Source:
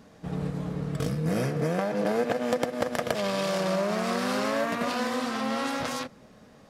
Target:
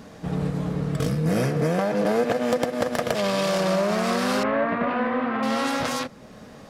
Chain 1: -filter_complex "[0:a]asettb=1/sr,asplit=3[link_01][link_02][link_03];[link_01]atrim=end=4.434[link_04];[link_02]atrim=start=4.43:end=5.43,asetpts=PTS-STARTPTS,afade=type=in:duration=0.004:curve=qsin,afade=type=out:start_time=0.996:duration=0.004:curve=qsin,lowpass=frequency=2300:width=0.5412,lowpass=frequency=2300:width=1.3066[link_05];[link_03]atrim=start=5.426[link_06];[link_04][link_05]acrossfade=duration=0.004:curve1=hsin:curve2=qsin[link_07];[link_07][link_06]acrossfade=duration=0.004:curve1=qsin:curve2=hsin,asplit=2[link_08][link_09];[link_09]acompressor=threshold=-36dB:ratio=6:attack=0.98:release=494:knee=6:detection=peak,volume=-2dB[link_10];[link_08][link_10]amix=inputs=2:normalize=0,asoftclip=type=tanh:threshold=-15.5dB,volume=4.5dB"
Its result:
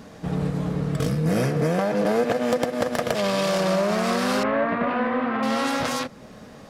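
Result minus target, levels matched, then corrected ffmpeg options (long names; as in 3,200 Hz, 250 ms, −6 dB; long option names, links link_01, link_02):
downward compressor: peak gain reduction −6 dB
-filter_complex "[0:a]asettb=1/sr,asplit=3[link_01][link_02][link_03];[link_01]atrim=end=4.434[link_04];[link_02]atrim=start=4.43:end=5.43,asetpts=PTS-STARTPTS,afade=type=in:duration=0.004:curve=qsin,afade=type=out:start_time=0.996:duration=0.004:curve=qsin,lowpass=frequency=2300:width=0.5412,lowpass=frequency=2300:width=1.3066[link_05];[link_03]atrim=start=5.426[link_06];[link_04][link_05]acrossfade=duration=0.004:curve1=hsin:curve2=qsin[link_07];[link_07][link_06]acrossfade=duration=0.004:curve1=qsin:curve2=hsin,asplit=2[link_08][link_09];[link_09]acompressor=threshold=-43dB:ratio=6:attack=0.98:release=494:knee=6:detection=peak,volume=-2dB[link_10];[link_08][link_10]amix=inputs=2:normalize=0,asoftclip=type=tanh:threshold=-15.5dB,volume=4.5dB"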